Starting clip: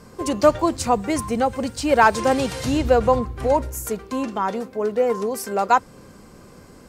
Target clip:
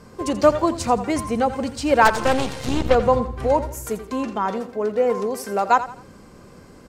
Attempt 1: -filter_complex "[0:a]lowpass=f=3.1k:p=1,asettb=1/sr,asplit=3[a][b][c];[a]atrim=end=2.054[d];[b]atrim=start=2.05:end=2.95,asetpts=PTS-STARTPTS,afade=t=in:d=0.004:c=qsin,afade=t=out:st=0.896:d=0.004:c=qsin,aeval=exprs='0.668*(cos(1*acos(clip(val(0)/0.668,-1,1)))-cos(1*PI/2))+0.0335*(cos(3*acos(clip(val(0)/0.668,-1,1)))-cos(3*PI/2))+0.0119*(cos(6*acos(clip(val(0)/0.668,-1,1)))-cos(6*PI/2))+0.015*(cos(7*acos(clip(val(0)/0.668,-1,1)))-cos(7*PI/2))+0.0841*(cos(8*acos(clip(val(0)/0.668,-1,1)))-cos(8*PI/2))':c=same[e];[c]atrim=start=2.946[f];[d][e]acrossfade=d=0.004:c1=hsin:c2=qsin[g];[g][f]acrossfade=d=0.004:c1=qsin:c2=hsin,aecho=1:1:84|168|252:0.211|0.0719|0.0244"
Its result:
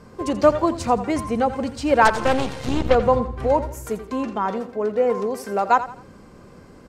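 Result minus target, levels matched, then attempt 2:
8000 Hz band -4.0 dB
-filter_complex "[0:a]lowpass=f=6.9k:p=1,asettb=1/sr,asplit=3[a][b][c];[a]atrim=end=2.054[d];[b]atrim=start=2.05:end=2.95,asetpts=PTS-STARTPTS,afade=t=in:d=0.004:c=qsin,afade=t=out:st=0.896:d=0.004:c=qsin,aeval=exprs='0.668*(cos(1*acos(clip(val(0)/0.668,-1,1)))-cos(1*PI/2))+0.0335*(cos(3*acos(clip(val(0)/0.668,-1,1)))-cos(3*PI/2))+0.0119*(cos(6*acos(clip(val(0)/0.668,-1,1)))-cos(6*PI/2))+0.015*(cos(7*acos(clip(val(0)/0.668,-1,1)))-cos(7*PI/2))+0.0841*(cos(8*acos(clip(val(0)/0.668,-1,1)))-cos(8*PI/2))':c=same[e];[c]atrim=start=2.946[f];[d][e]acrossfade=d=0.004:c1=hsin:c2=qsin[g];[g][f]acrossfade=d=0.004:c1=qsin:c2=hsin,aecho=1:1:84|168|252:0.211|0.0719|0.0244"

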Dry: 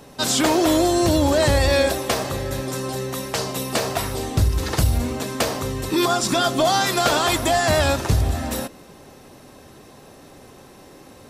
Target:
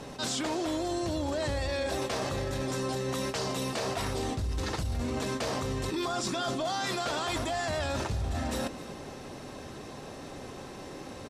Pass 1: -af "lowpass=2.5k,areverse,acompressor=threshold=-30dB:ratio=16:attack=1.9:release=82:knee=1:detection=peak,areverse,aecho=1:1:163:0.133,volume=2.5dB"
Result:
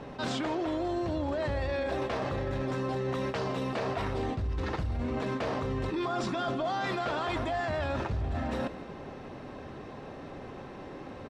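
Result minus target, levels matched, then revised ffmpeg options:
8000 Hz band -14.5 dB; echo 0.101 s early
-af "lowpass=7.9k,areverse,acompressor=threshold=-30dB:ratio=16:attack=1.9:release=82:knee=1:detection=peak,areverse,aecho=1:1:264:0.133,volume=2.5dB"

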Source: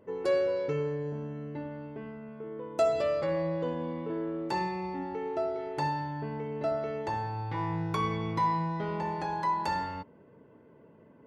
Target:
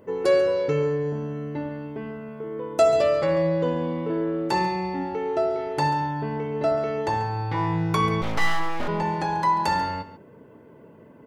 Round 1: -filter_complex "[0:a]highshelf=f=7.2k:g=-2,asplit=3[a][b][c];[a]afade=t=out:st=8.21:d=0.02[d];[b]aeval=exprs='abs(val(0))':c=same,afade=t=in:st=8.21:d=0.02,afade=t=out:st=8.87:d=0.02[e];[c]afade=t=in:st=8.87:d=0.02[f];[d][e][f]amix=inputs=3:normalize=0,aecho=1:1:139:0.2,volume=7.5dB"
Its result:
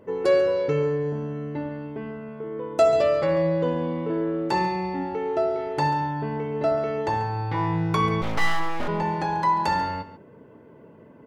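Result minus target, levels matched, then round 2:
8000 Hz band -3.0 dB
-filter_complex "[0:a]highshelf=f=7.2k:g=6.5,asplit=3[a][b][c];[a]afade=t=out:st=8.21:d=0.02[d];[b]aeval=exprs='abs(val(0))':c=same,afade=t=in:st=8.21:d=0.02,afade=t=out:st=8.87:d=0.02[e];[c]afade=t=in:st=8.87:d=0.02[f];[d][e][f]amix=inputs=3:normalize=0,aecho=1:1:139:0.2,volume=7.5dB"

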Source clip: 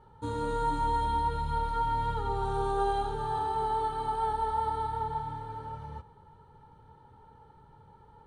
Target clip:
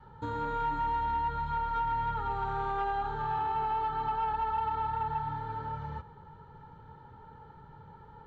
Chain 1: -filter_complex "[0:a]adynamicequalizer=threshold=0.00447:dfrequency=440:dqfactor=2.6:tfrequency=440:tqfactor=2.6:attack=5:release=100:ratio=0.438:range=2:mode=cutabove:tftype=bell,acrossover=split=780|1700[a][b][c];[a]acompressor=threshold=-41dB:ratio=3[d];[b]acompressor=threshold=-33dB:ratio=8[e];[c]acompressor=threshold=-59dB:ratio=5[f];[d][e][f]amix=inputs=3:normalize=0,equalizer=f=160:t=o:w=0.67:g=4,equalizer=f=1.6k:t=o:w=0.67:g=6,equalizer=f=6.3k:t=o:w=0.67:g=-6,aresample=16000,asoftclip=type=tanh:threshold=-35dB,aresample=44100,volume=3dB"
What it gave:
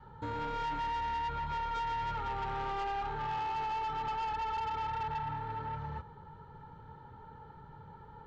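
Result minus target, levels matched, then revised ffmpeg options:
soft clip: distortion +12 dB
-filter_complex "[0:a]adynamicequalizer=threshold=0.00447:dfrequency=440:dqfactor=2.6:tfrequency=440:tqfactor=2.6:attack=5:release=100:ratio=0.438:range=2:mode=cutabove:tftype=bell,acrossover=split=780|1700[a][b][c];[a]acompressor=threshold=-41dB:ratio=3[d];[b]acompressor=threshold=-33dB:ratio=8[e];[c]acompressor=threshold=-59dB:ratio=5[f];[d][e][f]amix=inputs=3:normalize=0,equalizer=f=160:t=o:w=0.67:g=4,equalizer=f=1.6k:t=o:w=0.67:g=6,equalizer=f=6.3k:t=o:w=0.67:g=-6,aresample=16000,asoftclip=type=tanh:threshold=-25.5dB,aresample=44100,volume=3dB"

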